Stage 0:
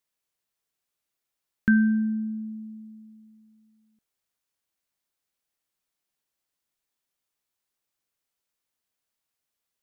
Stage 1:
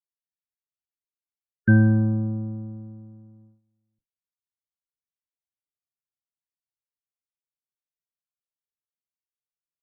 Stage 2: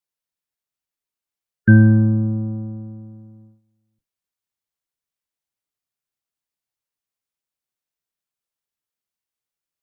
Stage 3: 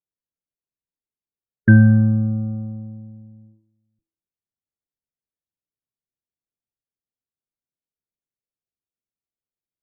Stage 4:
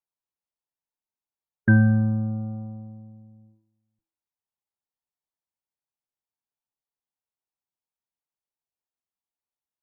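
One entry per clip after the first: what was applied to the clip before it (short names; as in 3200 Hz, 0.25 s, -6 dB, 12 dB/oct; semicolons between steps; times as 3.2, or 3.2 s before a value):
octaver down 1 oct, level +3 dB; loudest bins only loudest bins 32; gate -53 dBFS, range -16 dB
dynamic EQ 740 Hz, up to -7 dB, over -42 dBFS, Q 1.4; gain +6 dB
de-hum 326.9 Hz, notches 5; low-pass opened by the level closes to 460 Hz, open at -13.5 dBFS
bell 880 Hz +12.5 dB 0.89 oct; gain -6.5 dB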